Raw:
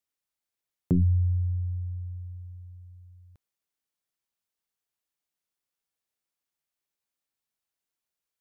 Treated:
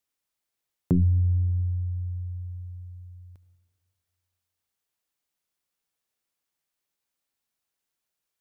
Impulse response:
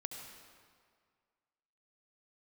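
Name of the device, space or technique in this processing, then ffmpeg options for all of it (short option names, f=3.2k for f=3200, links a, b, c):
ducked reverb: -filter_complex "[0:a]asplit=3[a][b][c];[1:a]atrim=start_sample=2205[d];[b][d]afir=irnorm=-1:irlink=0[e];[c]apad=whole_len=370678[f];[e][f]sidechaincompress=threshold=-31dB:ratio=4:attack=16:release=1410,volume=-2dB[g];[a][g]amix=inputs=2:normalize=0"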